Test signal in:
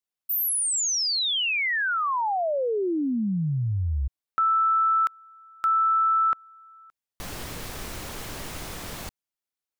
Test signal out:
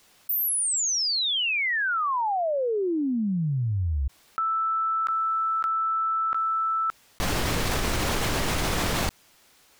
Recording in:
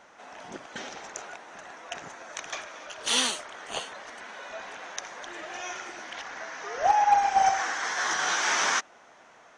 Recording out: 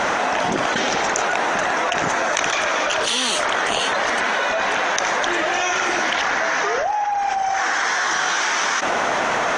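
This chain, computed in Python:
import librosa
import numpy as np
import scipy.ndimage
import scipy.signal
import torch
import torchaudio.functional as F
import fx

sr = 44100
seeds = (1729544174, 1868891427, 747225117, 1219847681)

y = fx.high_shelf(x, sr, hz=8500.0, db=-8.5)
y = fx.env_flatten(y, sr, amount_pct=100)
y = y * 10.0 ** (-4.0 / 20.0)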